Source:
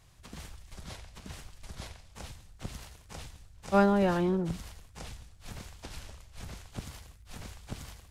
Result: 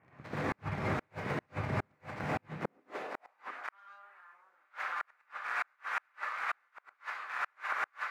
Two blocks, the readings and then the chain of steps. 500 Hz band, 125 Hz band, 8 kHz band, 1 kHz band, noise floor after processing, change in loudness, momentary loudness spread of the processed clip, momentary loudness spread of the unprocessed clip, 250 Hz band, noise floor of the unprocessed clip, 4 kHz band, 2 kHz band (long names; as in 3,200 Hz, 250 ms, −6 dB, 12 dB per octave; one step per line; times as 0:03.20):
−9.0 dB, −3.5 dB, −12.0 dB, −0.5 dB, −74 dBFS, −8.0 dB, 11 LU, 22 LU, −10.5 dB, −56 dBFS, −5.0 dB, +7.5 dB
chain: ceiling on every frequency bin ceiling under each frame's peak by 17 dB
Butterworth low-pass 2,300 Hz 48 dB per octave
in parallel at −1 dB: downward compressor 5 to 1, threshold −41 dBFS, peak gain reduction 20 dB
on the sum: leveller curve on the samples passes 2
reverb whose tail is shaped and stops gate 160 ms rising, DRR −8 dB
high-pass filter sweep 120 Hz → 1,300 Hz, 0:02.43–0:03.53
on a send: feedback echo with a high-pass in the loop 354 ms, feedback 67%, high-pass 310 Hz, level −22 dB
on the sum: gate with flip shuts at −15 dBFS, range −40 dB
level −7 dB